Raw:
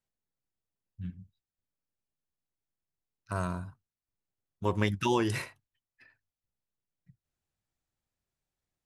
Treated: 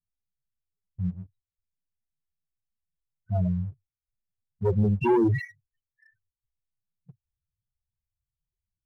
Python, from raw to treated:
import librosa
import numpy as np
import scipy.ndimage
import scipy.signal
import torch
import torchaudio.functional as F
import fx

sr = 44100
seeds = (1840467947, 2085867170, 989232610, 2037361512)

y = fx.env_lowpass(x, sr, base_hz=1500.0, full_db=-26.5)
y = fx.spec_topn(y, sr, count=4)
y = fx.leveller(y, sr, passes=1)
y = y * 10.0 ** (7.0 / 20.0)